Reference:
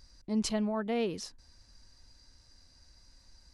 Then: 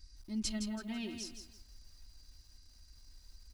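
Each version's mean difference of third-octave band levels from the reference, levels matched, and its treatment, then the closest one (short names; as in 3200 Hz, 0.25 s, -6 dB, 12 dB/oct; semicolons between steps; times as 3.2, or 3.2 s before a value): 6.5 dB: passive tone stack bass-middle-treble 6-0-2; comb 3.2 ms, depth 86%; lo-fi delay 0.165 s, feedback 35%, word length 12-bit, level -7 dB; gain +10.5 dB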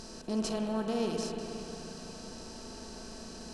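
16.0 dB: per-bin compression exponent 0.4; bell 2100 Hz -13.5 dB 0.29 oct; spring tank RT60 3.4 s, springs 36/60 ms, chirp 65 ms, DRR 2 dB; gain -5 dB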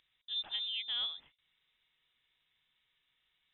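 9.5 dB: HPF 250 Hz 12 dB/oct; air absorption 290 m; inverted band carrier 3800 Hz; gain -3.5 dB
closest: first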